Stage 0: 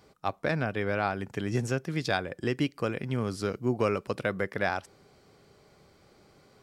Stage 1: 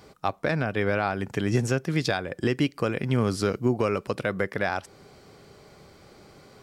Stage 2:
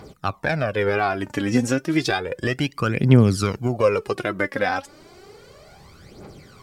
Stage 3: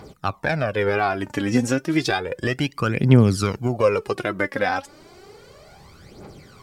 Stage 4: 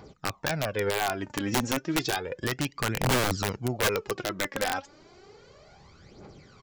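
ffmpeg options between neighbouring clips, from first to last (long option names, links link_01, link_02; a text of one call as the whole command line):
ffmpeg -i in.wav -af "alimiter=limit=-20.5dB:level=0:latency=1:release=348,volume=8dB" out.wav
ffmpeg -i in.wav -af "aphaser=in_gain=1:out_gain=1:delay=4:decay=0.66:speed=0.32:type=triangular,volume=2.5dB" out.wav
ffmpeg -i in.wav -af "equalizer=frequency=880:width=5.5:gain=2" out.wav
ffmpeg -i in.wav -af "aresample=16000,aresample=44100,aeval=exprs='(mod(3.98*val(0)+1,2)-1)/3.98':channel_layout=same,volume=-6.5dB" out.wav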